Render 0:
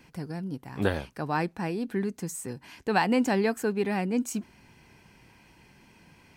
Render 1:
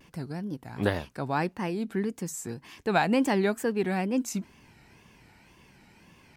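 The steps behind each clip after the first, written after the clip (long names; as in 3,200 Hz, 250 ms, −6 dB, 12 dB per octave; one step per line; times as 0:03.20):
tape wow and flutter 150 cents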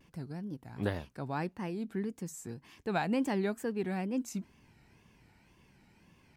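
low-shelf EQ 310 Hz +5 dB
level −9 dB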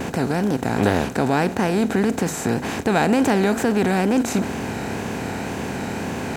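compressor on every frequency bin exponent 0.4
in parallel at −2 dB: brickwall limiter −24.5 dBFS, peak gain reduction 9.5 dB
on the sum: level +7 dB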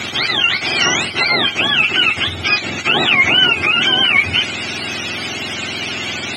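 frequency axis turned over on the octave scale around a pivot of 760 Hz
meter weighting curve D
level +2.5 dB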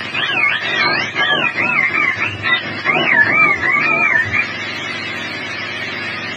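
partials spread apart or drawn together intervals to 90%
level +2 dB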